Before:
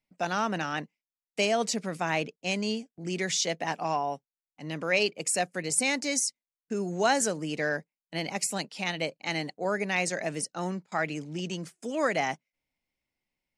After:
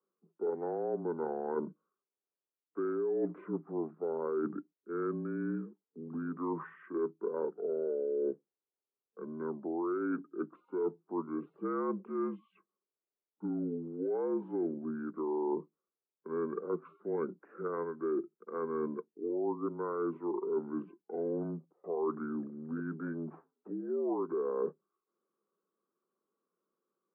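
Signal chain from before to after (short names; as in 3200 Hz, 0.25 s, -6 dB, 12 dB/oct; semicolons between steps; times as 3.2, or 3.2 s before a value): bell 650 Hz +14 dB 0.91 oct; limiter -13.5 dBFS, peak gain reduction 10.5 dB; reverse; compressor, threshold -29 dBFS, peak gain reduction 11.5 dB; reverse; mistuned SSB +150 Hz 200–2700 Hz; speed mistake 15 ips tape played at 7.5 ips; gain -2.5 dB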